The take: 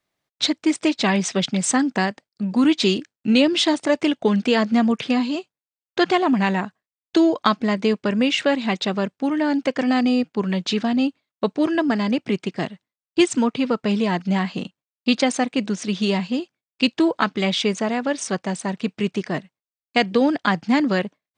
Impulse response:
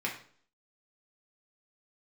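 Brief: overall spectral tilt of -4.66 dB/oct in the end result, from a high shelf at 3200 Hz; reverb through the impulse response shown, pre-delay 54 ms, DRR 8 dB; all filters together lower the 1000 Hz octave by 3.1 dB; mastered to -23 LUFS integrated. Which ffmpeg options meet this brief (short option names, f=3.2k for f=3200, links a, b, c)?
-filter_complex "[0:a]equalizer=f=1k:t=o:g=-3.5,highshelf=f=3.2k:g=-7.5,asplit=2[a][b];[1:a]atrim=start_sample=2205,adelay=54[c];[b][c]afir=irnorm=-1:irlink=0,volume=-14dB[d];[a][d]amix=inputs=2:normalize=0,volume=-1dB"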